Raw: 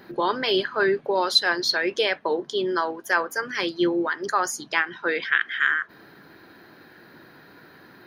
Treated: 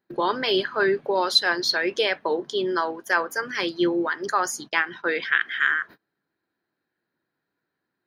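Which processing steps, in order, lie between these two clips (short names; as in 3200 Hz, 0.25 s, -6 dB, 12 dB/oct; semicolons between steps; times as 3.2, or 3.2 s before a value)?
gate -39 dBFS, range -32 dB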